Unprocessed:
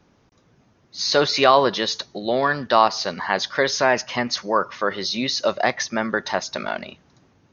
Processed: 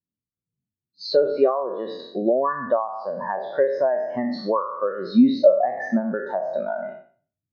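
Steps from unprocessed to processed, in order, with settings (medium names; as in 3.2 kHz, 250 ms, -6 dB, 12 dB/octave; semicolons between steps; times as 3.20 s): spectral sustain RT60 1.04 s; treble shelf 2.4 kHz -11.5 dB; compression 12:1, threshold -25 dBFS, peak gain reduction 17 dB; spectral contrast expander 2.5:1; trim +8.5 dB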